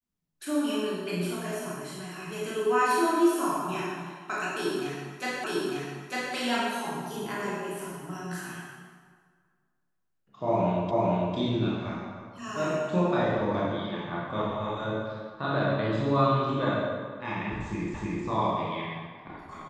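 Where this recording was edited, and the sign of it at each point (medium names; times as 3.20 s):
5.44 s: repeat of the last 0.9 s
10.91 s: repeat of the last 0.45 s
17.94 s: repeat of the last 0.31 s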